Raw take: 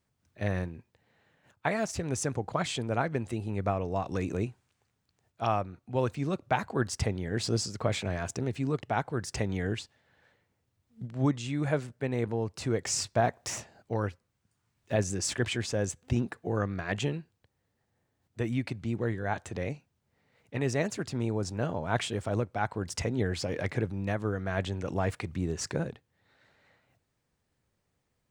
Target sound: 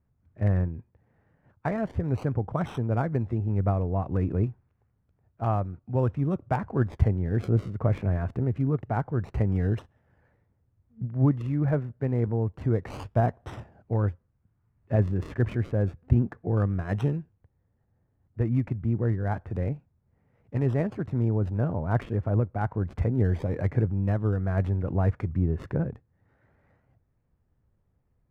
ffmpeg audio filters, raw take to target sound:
ffmpeg -i in.wav -filter_complex "[0:a]aemphasis=mode=reproduction:type=bsi,acrossover=split=2200[link_01][link_02];[link_02]acrusher=samples=38:mix=1:aa=0.000001:lfo=1:lforange=38:lforate=0.28[link_03];[link_01][link_03]amix=inputs=2:normalize=0,adynamicsmooth=sensitivity=7.5:basefreq=6900,volume=-1dB" out.wav

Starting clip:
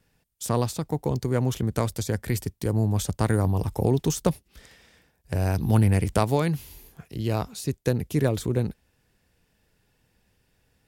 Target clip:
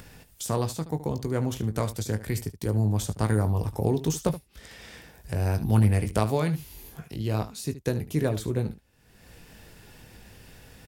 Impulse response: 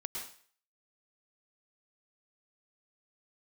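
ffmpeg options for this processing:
-af "acompressor=mode=upward:threshold=-29dB:ratio=2.5,aecho=1:1:19|74:0.335|0.2,volume=-3dB"

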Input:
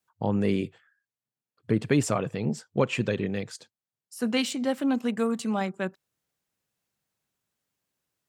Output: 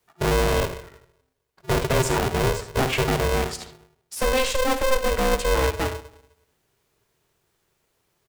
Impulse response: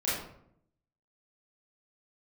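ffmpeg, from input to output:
-filter_complex "[0:a]bass=frequency=250:gain=6,treble=frequency=4000:gain=-3,asplit=2[link_01][link_02];[link_02]acompressor=threshold=-36dB:ratio=6,volume=2.5dB[link_03];[link_01][link_03]amix=inputs=2:normalize=0,asoftclip=type=tanh:threshold=-21.5dB,aecho=1:1:56|78:0.266|0.224,asplit=2[link_04][link_05];[1:a]atrim=start_sample=2205,adelay=15[link_06];[link_05][link_06]afir=irnorm=-1:irlink=0,volume=-22.5dB[link_07];[link_04][link_07]amix=inputs=2:normalize=0,aeval=exprs='val(0)*sgn(sin(2*PI*260*n/s))':channel_layout=same,volume=4.5dB"

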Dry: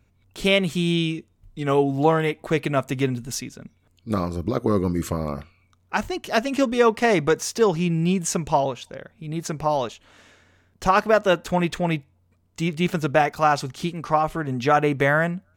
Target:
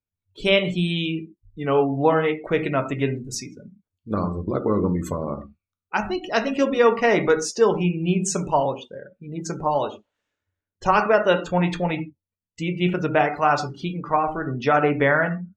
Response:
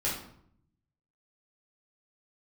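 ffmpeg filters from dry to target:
-filter_complex "[0:a]asplit=2[link_01][link_02];[1:a]atrim=start_sample=2205,atrim=end_sample=6615[link_03];[link_02][link_03]afir=irnorm=-1:irlink=0,volume=-10dB[link_04];[link_01][link_04]amix=inputs=2:normalize=0,afftdn=noise_reduction=29:noise_floor=-34,equalizer=frequency=61:width_type=o:width=2.4:gain=-6,volume=-2dB"

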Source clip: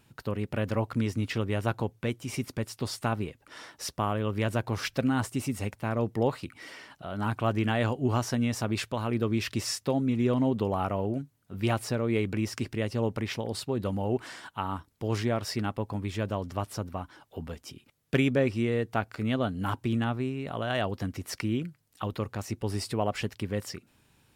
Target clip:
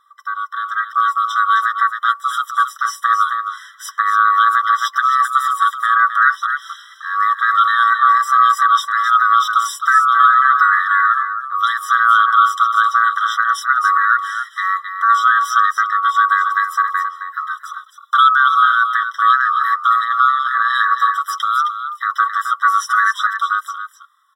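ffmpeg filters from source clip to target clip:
ffmpeg -i in.wav -filter_complex "[0:a]afftfilt=real='real(if(lt(b,960),b+48*(1-2*mod(floor(b/48),2)),b),0)':imag='imag(if(lt(b,960),b+48*(1-2*mod(floor(b/48),2)),b),0)':win_size=2048:overlap=0.75,tiltshelf=frequency=930:gain=8,dynaudnorm=framelen=100:gausssize=21:maxgain=11dB,flanger=delay=2.5:depth=6.3:regen=16:speed=0.12:shape=sinusoidal,asplit=2[link_01][link_02];[link_02]aecho=0:1:265:0.355[link_03];[link_01][link_03]amix=inputs=2:normalize=0,alimiter=level_in=12dB:limit=-1dB:release=50:level=0:latency=1,afftfilt=real='re*eq(mod(floor(b*sr/1024/1000),2),1)':imag='im*eq(mod(floor(b*sr/1024/1000),2),1)':win_size=1024:overlap=0.75,volume=-1dB" out.wav

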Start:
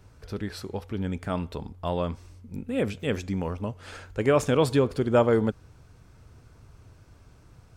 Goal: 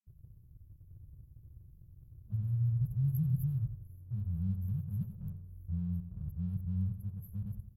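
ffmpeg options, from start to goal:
ffmpeg -i in.wav -filter_complex "[0:a]areverse,afftfilt=real='re*(1-between(b*sr/4096,210,11000))':imag='im*(1-between(b*sr/4096,210,11000))':win_size=4096:overlap=0.75,asplit=2[link_01][link_02];[link_02]aeval=exprs='sgn(val(0))*max(abs(val(0))-0.00211,0)':channel_layout=same,volume=-5dB[link_03];[link_01][link_03]amix=inputs=2:normalize=0,equalizer=frequency=200:width_type=o:width=0.33:gain=-10,equalizer=frequency=800:width_type=o:width=0.33:gain=-5,equalizer=frequency=2000:width_type=o:width=0.33:gain=-10,equalizer=frequency=6300:width_type=o:width=0.33:gain=-9,asplit=2[link_04][link_05];[link_05]adelay=86,lowpass=frequency=4300:poles=1,volume=-10dB,asplit=2[link_06][link_07];[link_07]adelay=86,lowpass=frequency=4300:poles=1,volume=0.39,asplit=2[link_08][link_09];[link_09]adelay=86,lowpass=frequency=4300:poles=1,volume=0.39,asplit=2[link_10][link_11];[link_11]adelay=86,lowpass=frequency=4300:poles=1,volume=0.39[link_12];[link_04][link_06][link_08][link_10][link_12]amix=inputs=5:normalize=0,volume=-3.5dB" out.wav

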